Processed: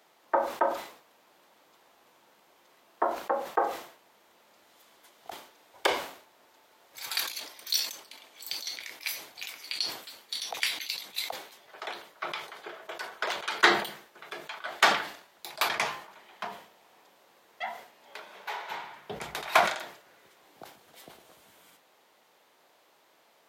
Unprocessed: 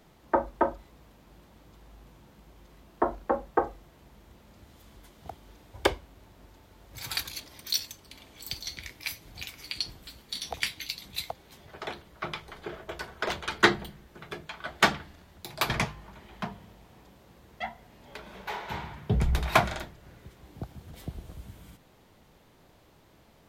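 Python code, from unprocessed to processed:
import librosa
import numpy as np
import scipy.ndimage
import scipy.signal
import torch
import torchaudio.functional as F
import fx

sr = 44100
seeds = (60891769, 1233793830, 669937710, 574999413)

y = scipy.signal.sosfilt(scipy.signal.butter(2, 560.0, 'highpass', fs=sr, output='sos'), x)
y = fx.sustainer(y, sr, db_per_s=100.0)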